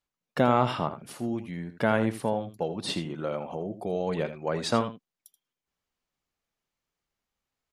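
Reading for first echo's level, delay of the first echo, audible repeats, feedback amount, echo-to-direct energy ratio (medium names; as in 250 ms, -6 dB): -12.0 dB, 81 ms, 1, no regular repeats, -12.0 dB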